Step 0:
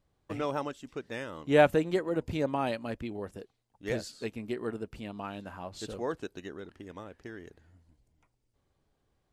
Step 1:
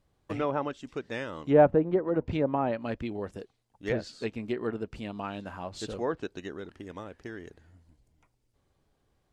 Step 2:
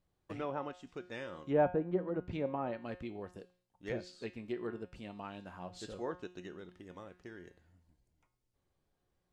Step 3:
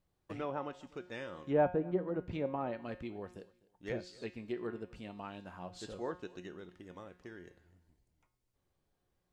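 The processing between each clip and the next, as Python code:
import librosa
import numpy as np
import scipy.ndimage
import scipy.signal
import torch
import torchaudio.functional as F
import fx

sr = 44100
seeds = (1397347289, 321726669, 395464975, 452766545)

y1 = fx.env_lowpass_down(x, sr, base_hz=950.0, full_db=-24.5)
y1 = y1 * librosa.db_to_amplitude(3.0)
y2 = fx.comb_fb(y1, sr, f0_hz=180.0, decay_s=0.47, harmonics='all', damping=0.0, mix_pct=70)
y3 = fx.echo_feedback(y2, sr, ms=252, feedback_pct=25, wet_db=-23)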